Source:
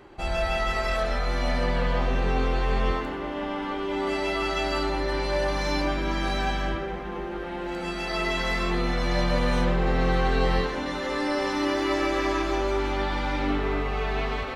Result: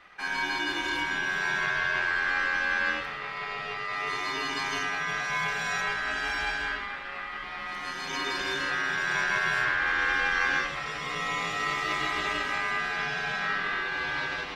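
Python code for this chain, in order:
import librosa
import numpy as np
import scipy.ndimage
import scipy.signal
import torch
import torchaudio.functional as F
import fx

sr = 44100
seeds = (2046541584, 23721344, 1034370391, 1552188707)

y = fx.vibrato(x, sr, rate_hz=0.9, depth_cents=9.9)
y = y * np.sin(2.0 * np.pi * 1600.0 * np.arange(len(y)) / sr)
y = y * 10.0 ** (-1.5 / 20.0)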